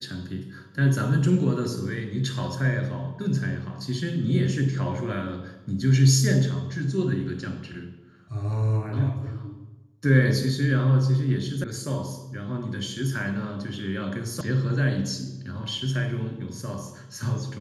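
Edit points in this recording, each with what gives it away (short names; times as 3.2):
11.64 sound cut off
14.41 sound cut off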